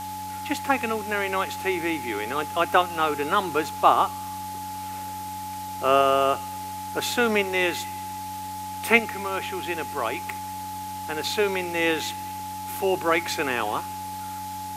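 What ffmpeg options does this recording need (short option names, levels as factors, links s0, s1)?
-af "bandreject=f=94:t=h:w=4,bandreject=f=188:t=h:w=4,bandreject=f=282:t=h:w=4,bandreject=f=850:w=30,afwtdn=0.0079"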